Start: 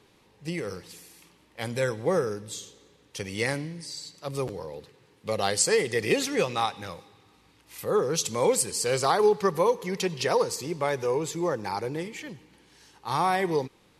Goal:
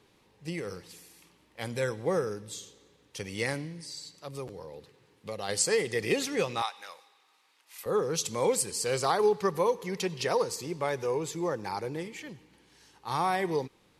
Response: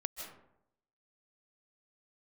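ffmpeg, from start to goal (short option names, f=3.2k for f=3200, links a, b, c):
-filter_complex "[0:a]asplit=3[a][b][c];[a]afade=t=out:st=4.18:d=0.02[d];[b]acompressor=threshold=-40dB:ratio=1.5,afade=t=in:st=4.18:d=0.02,afade=t=out:st=5.48:d=0.02[e];[c]afade=t=in:st=5.48:d=0.02[f];[d][e][f]amix=inputs=3:normalize=0,asettb=1/sr,asplit=3[g][h][i];[g]atrim=end=6.624[j];[h]atrim=start=6.62:end=7.86,asetpts=PTS-STARTPTS,afade=t=in:d=0.004:c=qsin,afade=t=out:st=1.236:d=0.004:c=qsin,highpass=820[k];[i]atrim=start=7.856[l];[j][k]acrossfade=d=0.004:c1=hsin:c2=qsin[m];[m][l]acrossfade=d=0.004:c1=qsin:c2=hsin,volume=-3.5dB"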